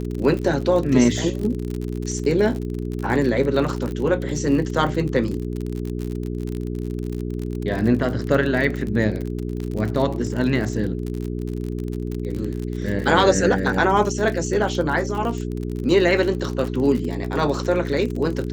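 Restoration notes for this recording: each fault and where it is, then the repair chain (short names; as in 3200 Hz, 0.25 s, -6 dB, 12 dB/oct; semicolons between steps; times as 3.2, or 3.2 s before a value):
crackle 45/s -26 dBFS
hum 60 Hz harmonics 7 -27 dBFS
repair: de-click; de-hum 60 Hz, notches 7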